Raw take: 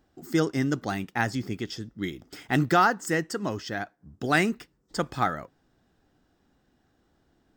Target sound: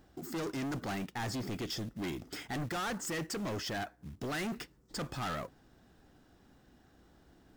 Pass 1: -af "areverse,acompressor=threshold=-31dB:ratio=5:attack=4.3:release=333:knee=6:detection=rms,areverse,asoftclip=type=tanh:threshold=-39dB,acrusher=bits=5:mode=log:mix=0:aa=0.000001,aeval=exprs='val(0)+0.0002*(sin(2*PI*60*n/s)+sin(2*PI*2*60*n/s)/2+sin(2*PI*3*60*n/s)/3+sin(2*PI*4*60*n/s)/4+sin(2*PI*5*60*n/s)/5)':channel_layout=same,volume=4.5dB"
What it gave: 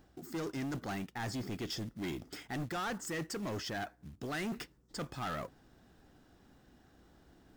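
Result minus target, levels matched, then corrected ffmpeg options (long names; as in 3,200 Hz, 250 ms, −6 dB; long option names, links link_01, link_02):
downward compressor: peak gain reduction +6.5 dB
-af "areverse,acompressor=threshold=-23dB:ratio=5:attack=4.3:release=333:knee=6:detection=rms,areverse,asoftclip=type=tanh:threshold=-39dB,acrusher=bits=5:mode=log:mix=0:aa=0.000001,aeval=exprs='val(0)+0.0002*(sin(2*PI*60*n/s)+sin(2*PI*2*60*n/s)/2+sin(2*PI*3*60*n/s)/3+sin(2*PI*4*60*n/s)/4+sin(2*PI*5*60*n/s)/5)':channel_layout=same,volume=4.5dB"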